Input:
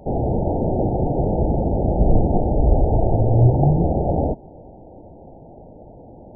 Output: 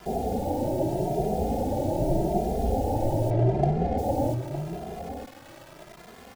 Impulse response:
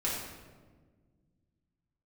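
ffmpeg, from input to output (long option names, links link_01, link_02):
-filter_complex "[0:a]lowshelf=frequency=160:gain=-11.5,bandreject=frequency=470:width=12,acrusher=bits=6:mix=0:aa=0.000001,aecho=1:1:912:0.316,asettb=1/sr,asplit=3[link_01][link_02][link_03];[link_01]atrim=end=3.304[link_04];[link_02]atrim=start=3.3:end=3.98,asetpts=PTS-STARTPTS,afade=type=in:duration=0.004:curve=qsin,afade=type=out:start_time=0.676:duration=0.004:curve=qsin,adynamicsmooth=sensitivity=4.5:basefreq=850[link_05];[link_03]atrim=start=3.976[link_06];[link_04][link_05]acrossfade=duration=0.004:curve1=hsin:curve2=qsin[link_07];[link_07][link_06]acrossfade=duration=0.004:curve1=qsin:curve2=hsin,asplit=2[link_08][link_09];[link_09]adelay=2.5,afreqshift=0.83[link_10];[link_08][link_10]amix=inputs=2:normalize=1"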